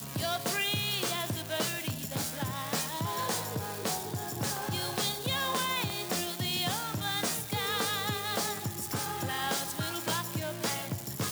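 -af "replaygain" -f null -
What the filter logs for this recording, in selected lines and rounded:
track_gain = +12.5 dB
track_peak = 0.095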